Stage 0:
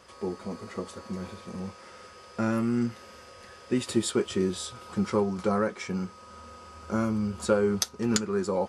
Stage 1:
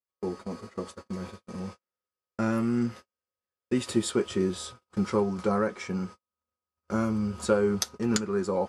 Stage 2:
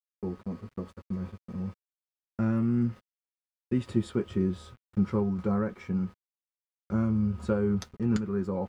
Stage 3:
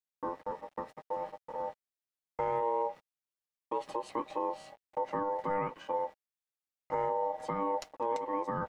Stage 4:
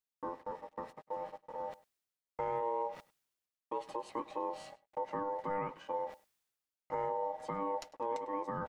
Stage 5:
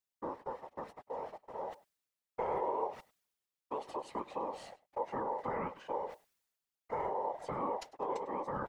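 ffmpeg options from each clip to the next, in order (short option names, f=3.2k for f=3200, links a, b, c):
-af "agate=range=-48dB:threshold=-40dB:ratio=16:detection=peak,adynamicequalizer=threshold=0.00631:dfrequency=2400:dqfactor=0.7:tfrequency=2400:tqfactor=0.7:attack=5:release=100:ratio=0.375:range=1.5:mode=cutabove:tftype=highshelf"
-af "aeval=exprs='val(0)*gte(abs(val(0)),0.00398)':c=same,bass=f=250:g=13,treble=f=4k:g=-12,volume=-7dB"
-af "aeval=exprs='val(0)*sin(2*PI*700*n/s)':c=same,alimiter=limit=-22dB:level=0:latency=1:release=138"
-af "areverse,acompressor=mode=upward:threshold=-37dB:ratio=2.5,areverse,aecho=1:1:101:0.0891,volume=-4dB"
-af "afftfilt=real='hypot(re,im)*cos(2*PI*random(0))':imag='hypot(re,im)*sin(2*PI*random(1))':win_size=512:overlap=0.75,volume=6dB"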